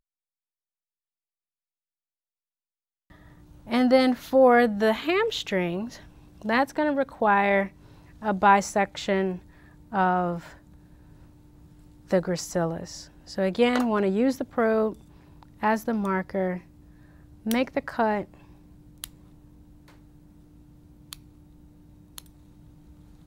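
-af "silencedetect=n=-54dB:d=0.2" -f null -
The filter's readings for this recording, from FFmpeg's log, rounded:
silence_start: 0.00
silence_end: 3.10 | silence_duration: 3.10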